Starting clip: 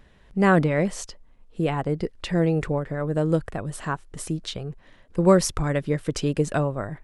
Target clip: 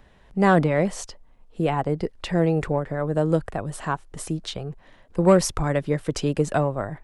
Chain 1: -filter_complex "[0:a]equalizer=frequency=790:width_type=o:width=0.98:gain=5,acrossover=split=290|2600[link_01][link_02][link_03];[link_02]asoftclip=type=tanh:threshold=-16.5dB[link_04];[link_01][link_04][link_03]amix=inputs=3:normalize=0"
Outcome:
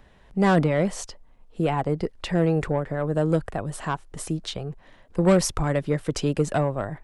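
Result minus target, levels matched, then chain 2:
soft clipping: distortion +9 dB
-filter_complex "[0:a]equalizer=frequency=790:width_type=o:width=0.98:gain=5,acrossover=split=290|2600[link_01][link_02][link_03];[link_02]asoftclip=type=tanh:threshold=-8.5dB[link_04];[link_01][link_04][link_03]amix=inputs=3:normalize=0"

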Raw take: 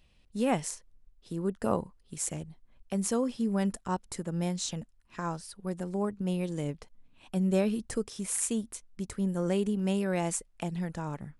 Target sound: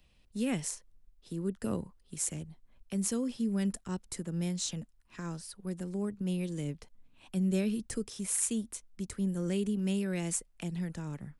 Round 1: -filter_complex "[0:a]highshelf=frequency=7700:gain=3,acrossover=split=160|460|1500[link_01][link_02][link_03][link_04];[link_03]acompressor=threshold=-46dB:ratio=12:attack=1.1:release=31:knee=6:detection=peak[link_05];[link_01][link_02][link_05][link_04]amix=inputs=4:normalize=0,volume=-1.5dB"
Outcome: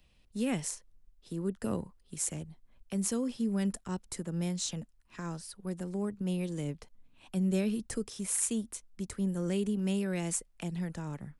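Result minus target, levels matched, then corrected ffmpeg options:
downward compressor: peak gain reduction −8.5 dB
-filter_complex "[0:a]highshelf=frequency=7700:gain=3,acrossover=split=160|460|1500[link_01][link_02][link_03][link_04];[link_03]acompressor=threshold=-55dB:ratio=12:attack=1.1:release=31:knee=6:detection=peak[link_05];[link_01][link_02][link_05][link_04]amix=inputs=4:normalize=0,volume=-1.5dB"

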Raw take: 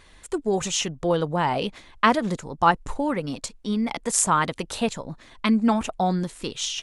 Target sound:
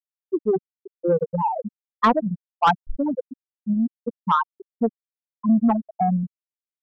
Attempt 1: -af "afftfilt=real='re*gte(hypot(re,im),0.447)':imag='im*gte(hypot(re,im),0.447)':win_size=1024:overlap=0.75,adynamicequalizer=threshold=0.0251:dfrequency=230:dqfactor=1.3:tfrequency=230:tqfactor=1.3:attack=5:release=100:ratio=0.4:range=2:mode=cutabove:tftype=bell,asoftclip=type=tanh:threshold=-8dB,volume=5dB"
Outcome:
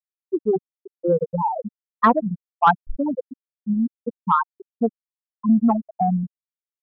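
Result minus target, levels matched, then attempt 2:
soft clipping: distortion −9 dB
-af "afftfilt=real='re*gte(hypot(re,im),0.447)':imag='im*gte(hypot(re,im),0.447)':win_size=1024:overlap=0.75,adynamicequalizer=threshold=0.0251:dfrequency=230:dqfactor=1.3:tfrequency=230:tqfactor=1.3:attack=5:release=100:ratio=0.4:range=2:mode=cutabove:tftype=bell,asoftclip=type=tanh:threshold=-14.5dB,volume=5dB"

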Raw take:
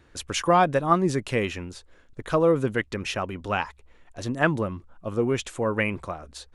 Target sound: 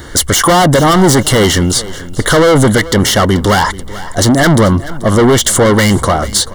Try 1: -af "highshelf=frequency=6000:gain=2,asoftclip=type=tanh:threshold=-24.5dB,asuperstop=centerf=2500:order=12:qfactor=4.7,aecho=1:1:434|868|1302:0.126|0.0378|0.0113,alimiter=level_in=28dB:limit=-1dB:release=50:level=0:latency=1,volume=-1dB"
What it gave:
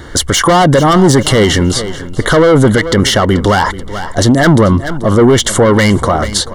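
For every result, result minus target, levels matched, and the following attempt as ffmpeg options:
8,000 Hz band −3.5 dB; soft clipping: distortion −4 dB
-af "highshelf=frequency=6000:gain=13,asoftclip=type=tanh:threshold=-24.5dB,asuperstop=centerf=2500:order=12:qfactor=4.7,aecho=1:1:434|868|1302:0.126|0.0378|0.0113,alimiter=level_in=28dB:limit=-1dB:release=50:level=0:latency=1,volume=-1dB"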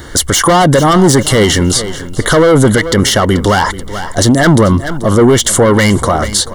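soft clipping: distortion −4 dB
-af "highshelf=frequency=6000:gain=13,asoftclip=type=tanh:threshold=-32dB,asuperstop=centerf=2500:order=12:qfactor=4.7,aecho=1:1:434|868|1302:0.126|0.0378|0.0113,alimiter=level_in=28dB:limit=-1dB:release=50:level=0:latency=1,volume=-1dB"

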